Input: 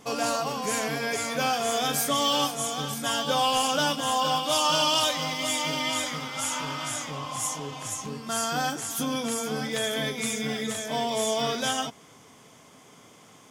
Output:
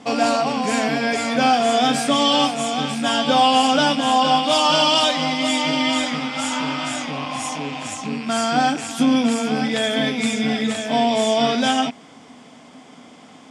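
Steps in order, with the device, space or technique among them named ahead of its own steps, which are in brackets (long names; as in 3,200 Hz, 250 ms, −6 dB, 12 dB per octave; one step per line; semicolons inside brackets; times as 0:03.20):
car door speaker with a rattle (loose part that buzzes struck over −47 dBFS, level −31 dBFS; loudspeaker in its box 97–7,900 Hz, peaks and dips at 120 Hz −8 dB, 250 Hz +10 dB, 400 Hz −4 dB, 740 Hz +5 dB, 1,100 Hz −3 dB, 6,400 Hz −9 dB)
0:07.02–0:07.64: notch filter 7,500 Hz, Q 10
level +7 dB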